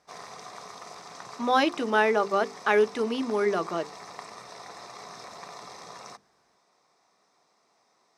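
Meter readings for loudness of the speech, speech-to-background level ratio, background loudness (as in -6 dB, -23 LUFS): -25.5 LUFS, 18.0 dB, -43.5 LUFS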